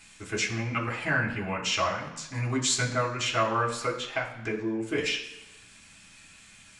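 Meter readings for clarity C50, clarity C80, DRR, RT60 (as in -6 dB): 8.5 dB, 10.5 dB, -3.5 dB, 1.0 s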